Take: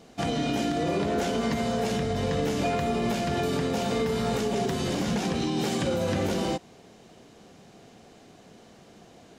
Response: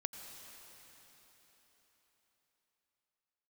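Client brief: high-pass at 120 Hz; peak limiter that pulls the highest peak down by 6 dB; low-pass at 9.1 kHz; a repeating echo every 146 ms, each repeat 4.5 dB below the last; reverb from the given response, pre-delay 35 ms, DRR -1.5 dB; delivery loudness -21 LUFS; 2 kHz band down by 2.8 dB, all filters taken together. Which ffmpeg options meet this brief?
-filter_complex "[0:a]highpass=120,lowpass=9100,equalizer=f=2000:t=o:g=-3.5,alimiter=limit=0.0794:level=0:latency=1,aecho=1:1:146|292|438|584|730|876|1022|1168|1314:0.596|0.357|0.214|0.129|0.0772|0.0463|0.0278|0.0167|0.01,asplit=2[s0][s1];[1:a]atrim=start_sample=2205,adelay=35[s2];[s1][s2]afir=irnorm=-1:irlink=0,volume=1.33[s3];[s0][s3]amix=inputs=2:normalize=0,volume=1.68"

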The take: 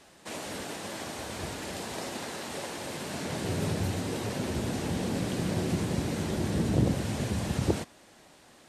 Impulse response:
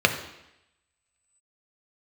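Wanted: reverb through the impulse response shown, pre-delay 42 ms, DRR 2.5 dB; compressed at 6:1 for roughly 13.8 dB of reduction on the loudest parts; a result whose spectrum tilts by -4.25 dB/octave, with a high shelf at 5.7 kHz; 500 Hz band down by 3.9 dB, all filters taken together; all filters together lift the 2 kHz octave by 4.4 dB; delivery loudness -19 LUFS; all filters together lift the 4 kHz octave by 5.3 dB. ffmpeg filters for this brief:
-filter_complex "[0:a]equalizer=f=500:t=o:g=-5.5,equalizer=f=2000:t=o:g=4.5,equalizer=f=4000:t=o:g=7,highshelf=f=5700:g=-4.5,acompressor=threshold=0.0158:ratio=6,asplit=2[s0][s1];[1:a]atrim=start_sample=2205,adelay=42[s2];[s1][s2]afir=irnorm=-1:irlink=0,volume=0.0944[s3];[s0][s3]amix=inputs=2:normalize=0,volume=7.94"

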